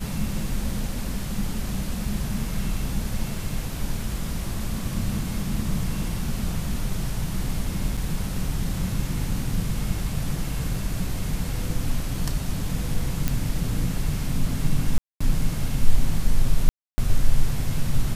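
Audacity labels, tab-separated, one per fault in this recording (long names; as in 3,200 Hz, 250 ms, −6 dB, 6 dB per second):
7.970000	7.970000	drop-out 4.9 ms
13.280000	13.280000	click
14.980000	15.210000	drop-out 225 ms
16.690000	16.980000	drop-out 290 ms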